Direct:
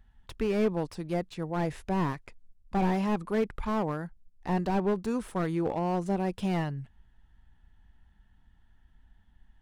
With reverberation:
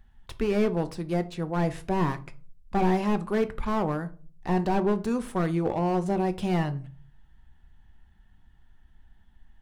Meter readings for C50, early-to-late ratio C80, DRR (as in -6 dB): 17.5 dB, 23.5 dB, 9.5 dB